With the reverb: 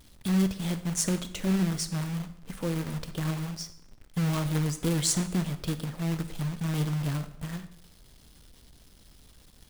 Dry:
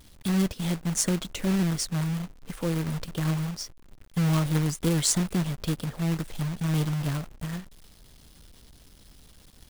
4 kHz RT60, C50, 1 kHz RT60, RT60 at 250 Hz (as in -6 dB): 0.65 s, 13.5 dB, 0.70 s, 0.80 s